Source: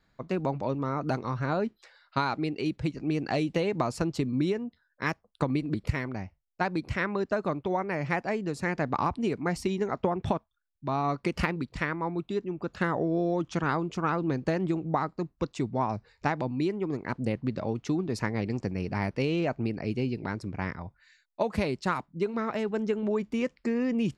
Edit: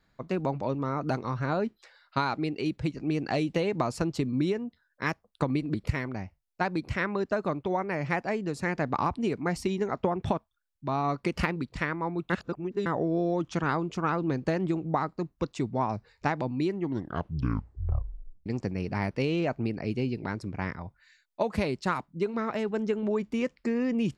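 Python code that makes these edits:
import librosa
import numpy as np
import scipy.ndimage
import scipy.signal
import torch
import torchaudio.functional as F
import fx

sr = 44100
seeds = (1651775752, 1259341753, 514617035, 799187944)

y = fx.edit(x, sr, fx.reverse_span(start_s=12.3, length_s=0.56),
    fx.tape_stop(start_s=16.66, length_s=1.8), tone=tone)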